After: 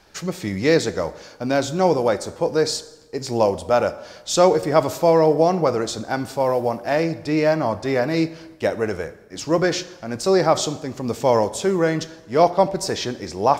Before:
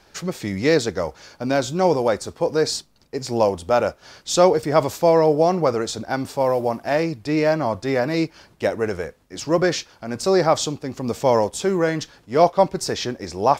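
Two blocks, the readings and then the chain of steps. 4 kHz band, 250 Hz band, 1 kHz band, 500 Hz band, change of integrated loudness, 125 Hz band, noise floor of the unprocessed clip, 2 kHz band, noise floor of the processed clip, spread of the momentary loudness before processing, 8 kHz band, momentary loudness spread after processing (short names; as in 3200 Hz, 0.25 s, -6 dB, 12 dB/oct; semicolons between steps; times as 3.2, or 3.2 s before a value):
0.0 dB, +0.5 dB, 0.0 dB, +0.5 dB, +0.5 dB, +0.5 dB, -56 dBFS, 0.0 dB, -46 dBFS, 12 LU, 0.0 dB, 11 LU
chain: plate-style reverb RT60 1.1 s, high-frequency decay 0.75×, DRR 13.5 dB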